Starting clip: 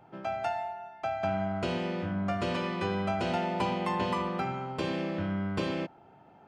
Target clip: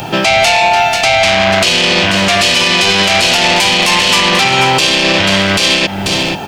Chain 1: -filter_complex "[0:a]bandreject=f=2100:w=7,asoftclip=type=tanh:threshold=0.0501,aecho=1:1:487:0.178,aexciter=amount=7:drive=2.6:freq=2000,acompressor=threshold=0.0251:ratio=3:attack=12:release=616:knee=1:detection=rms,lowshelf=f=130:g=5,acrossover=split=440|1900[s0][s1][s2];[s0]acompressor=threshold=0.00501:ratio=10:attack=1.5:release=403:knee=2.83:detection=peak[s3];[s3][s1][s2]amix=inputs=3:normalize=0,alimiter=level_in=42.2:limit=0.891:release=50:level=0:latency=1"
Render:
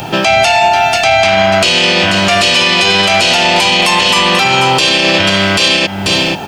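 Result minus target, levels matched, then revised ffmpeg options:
saturation: distortion -7 dB
-filter_complex "[0:a]bandreject=f=2100:w=7,asoftclip=type=tanh:threshold=0.0211,aecho=1:1:487:0.178,aexciter=amount=7:drive=2.6:freq=2000,acompressor=threshold=0.0251:ratio=3:attack=12:release=616:knee=1:detection=rms,lowshelf=f=130:g=5,acrossover=split=440|1900[s0][s1][s2];[s0]acompressor=threshold=0.00501:ratio=10:attack=1.5:release=403:knee=2.83:detection=peak[s3];[s3][s1][s2]amix=inputs=3:normalize=0,alimiter=level_in=42.2:limit=0.891:release=50:level=0:latency=1"

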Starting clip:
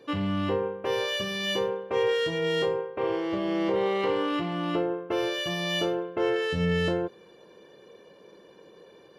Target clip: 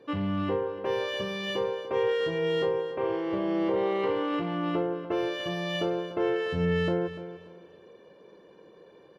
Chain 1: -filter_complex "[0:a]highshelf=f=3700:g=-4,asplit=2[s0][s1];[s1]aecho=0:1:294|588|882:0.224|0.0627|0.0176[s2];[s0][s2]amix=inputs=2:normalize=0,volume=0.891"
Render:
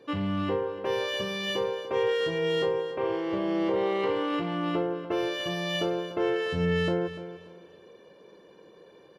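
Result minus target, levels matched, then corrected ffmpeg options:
8 kHz band +5.0 dB
-filter_complex "[0:a]highshelf=f=3700:g=-11.5,asplit=2[s0][s1];[s1]aecho=0:1:294|588|882:0.224|0.0627|0.0176[s2];[s0][s2]amix=inputs=2:normalize=0,volume=0.891"

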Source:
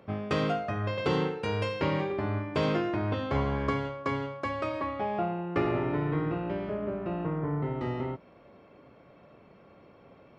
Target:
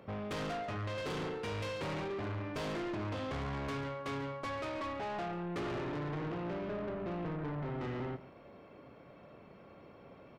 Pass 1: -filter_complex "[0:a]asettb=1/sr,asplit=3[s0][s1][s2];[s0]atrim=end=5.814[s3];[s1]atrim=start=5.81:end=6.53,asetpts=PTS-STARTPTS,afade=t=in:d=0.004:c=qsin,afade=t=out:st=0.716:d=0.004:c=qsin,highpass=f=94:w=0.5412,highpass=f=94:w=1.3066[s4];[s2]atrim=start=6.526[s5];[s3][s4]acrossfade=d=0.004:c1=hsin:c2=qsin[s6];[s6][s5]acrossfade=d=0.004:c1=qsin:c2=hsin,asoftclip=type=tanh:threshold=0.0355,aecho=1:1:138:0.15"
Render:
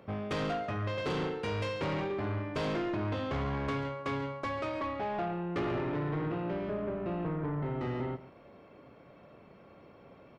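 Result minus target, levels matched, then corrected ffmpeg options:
saturation: distortion -4 dB
-filter_complex "[0:a]asettb=1/sr,asplit=3[s0][s1][s2];[s0]atrim=end=5.814[s3];[s1]atrim=start=5.81:end=6.53,asetpts=PTS-STARTPTS,afade=t=in:d=0.004:c=qsin,afade=t=out:st=0.716:d=0.004:c=qsin,highpass=f=94:w=0.5412,highpass=f=94:w=1.3066[s4];[s2]atrim=start=6.526[s5];[s3][s4]acrossfade=d=0.004:c1=hsin:c2=qsin[s6];[s6][s5]acrossfade=d=0.004:c1=qsin:c2=hsin,asoftclip=type=tanh:threshold=0.0158,aecho=1:1:138:0.15"

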